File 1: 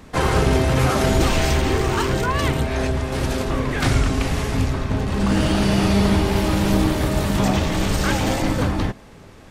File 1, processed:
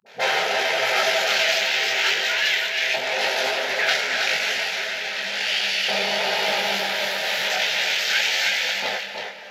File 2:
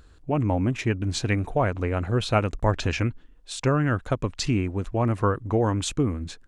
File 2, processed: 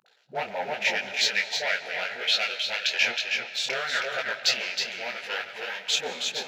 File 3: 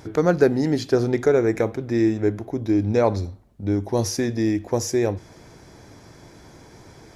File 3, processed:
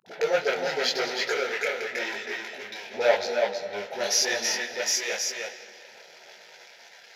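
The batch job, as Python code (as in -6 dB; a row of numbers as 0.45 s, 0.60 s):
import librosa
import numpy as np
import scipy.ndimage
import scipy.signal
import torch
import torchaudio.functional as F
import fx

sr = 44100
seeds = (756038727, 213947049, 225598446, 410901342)

p1 = fx.rider(x, sr, range_db=10, speed_s=0.5)
p2 = x + (p1 * 10.0 ** (-1.5 / 20.0))
p3 = fx.leveller(p2, sr, passes=3)
p4 = np.convolve(p3, np.full(5, 1.0 / 5))[:len(p3)]
p5 = fx.fixed_phaser(p4, sr, hz=300.0, stages=6)
p6 = fx.dispersion(p5, sr, late='highs', ms=63.0, hz=350.0)
p7 = fx.filter_lfo_highpass(p6, sr, shape='saw_up', hz=0.34, low_hz=980.0, high_hz=2100.0, q=1.2)
p8 = p7 + fx.echo_single(p7, sr, ms=319, db=-5.0, dry=0)
p9 = fx.rev_freeverb(p8, sr, rt60_s=3.6, hf_ratio=0.6, predelay_ms=110, drr_db=12.0)
y = fx.detune_double(p9, sr, cents=32)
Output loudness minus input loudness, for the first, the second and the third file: -0.5 LU, -1.0 LU, -5.0 LU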